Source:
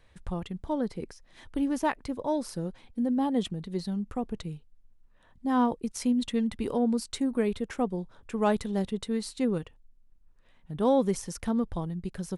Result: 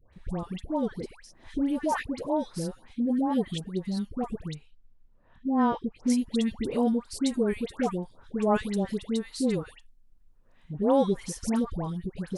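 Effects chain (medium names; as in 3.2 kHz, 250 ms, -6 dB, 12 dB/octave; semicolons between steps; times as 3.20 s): 4.42–5.97 s: distance through air 120 m; phase dispersion highs, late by 132 ms, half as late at 1.2 kHz; trim +1 dB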